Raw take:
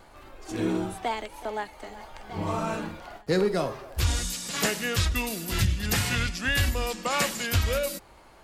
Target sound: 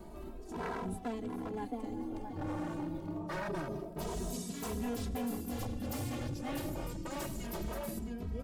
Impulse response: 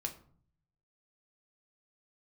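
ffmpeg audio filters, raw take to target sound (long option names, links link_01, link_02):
-filter_complex "[0:a]firequalizer=gain_entry='entry(150,0);entry(1500,-16);entry(11000,-6)':delay=0.05:min_phase=1,acrossover=split=170|3800[link_01][link_02][link_03];[link_01]aeval=exprs='clip(val(0),-1,0.0251)':channel_layout=same[link_04];[link_04][link_02][link_03]amix=inputs=3:normalize=0,equalizer=frequency=270:width_type=o:width=0.53:gain=12,asplit=2[link_05][link_06];[link_06]adelay=669,lowpass=frequency=1900:poles=1,volume=-8dB,asplit=2[link_07][link_08];[link_08]adelay=669,lowpass=frequency=1900:poles=1,volume=0.34,asplit=2[link_09][link_10];[link_10]adelay=669,lowpass=frequency=1900:poles=1,volume=0.34,asplit=2[link_11][link_12];[link_12]adelay=669,lowpass=frequency=1900:poles=1,volume=0.34[link_13];[link_05][link_07][link_09][link_11][link_13]amix=inputs=5:normalize=0,aeval=exprs='0.0447*(abs(mod(val(0)/0.0447+3,4)-2)-1)':channel_layout=same,areverse,acompressor=threshold=-42dB:ratio=10,areverse,asplit=2[link_14][link_15];[link_15]adelay=2.7,afreqshift=0.26[link_16];[link_14][link_16]amix=inputs=2:normalize=1,volume=9dB"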